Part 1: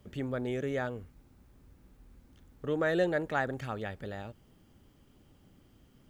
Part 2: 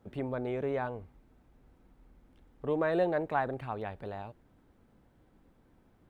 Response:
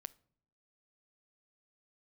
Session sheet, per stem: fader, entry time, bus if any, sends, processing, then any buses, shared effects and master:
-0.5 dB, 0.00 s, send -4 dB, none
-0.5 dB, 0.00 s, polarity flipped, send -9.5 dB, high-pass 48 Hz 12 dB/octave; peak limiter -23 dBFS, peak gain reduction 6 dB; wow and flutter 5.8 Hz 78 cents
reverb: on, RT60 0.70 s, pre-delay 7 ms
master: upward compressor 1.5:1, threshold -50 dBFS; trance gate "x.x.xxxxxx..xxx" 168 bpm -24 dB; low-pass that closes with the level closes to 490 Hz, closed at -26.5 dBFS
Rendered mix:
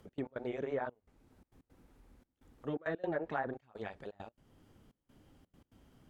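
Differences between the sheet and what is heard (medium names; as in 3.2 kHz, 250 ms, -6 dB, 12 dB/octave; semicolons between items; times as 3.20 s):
stem 1 -0.5 dB -> -10.0 dB; stem 2 -0.5 dB -> -8.0 dB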